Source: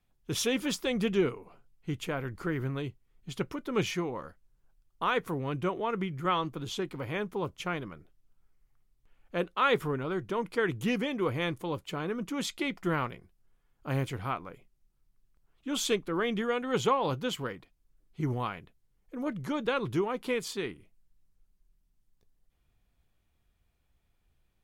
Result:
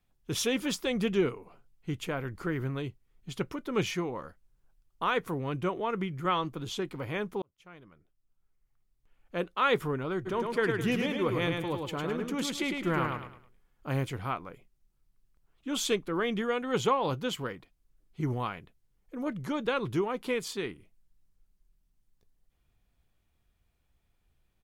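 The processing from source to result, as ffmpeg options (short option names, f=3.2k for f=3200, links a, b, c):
-filter_complex "[0:a]asplit=3[a][b][c];[a]afade=t=out:st=10.25:d=0.02[d];[b]aecho=1:1:105|210|315|420:0.631|0.208|0.0687|0.0227,afade=t=in:st=10.25:d=0.02,afade=t=out:st=13.95:d=0.02[e];[c]afade=t=in:st=13.95:d=0.02[f];[d][e][f]amix=inputs=3:normalize=0,asplit=2[g][h];[g]atrim=end=7.42,asetpts=PTS-STARTPTS,afade=t=out:st=7.416:d=0.004:c=hsin[i];[h]atrim=start=7.42,asetpts=PTS-STARTPTS,afade=t=in:d=2.31[j];[i][j]concat=n=2:v=0:a=1"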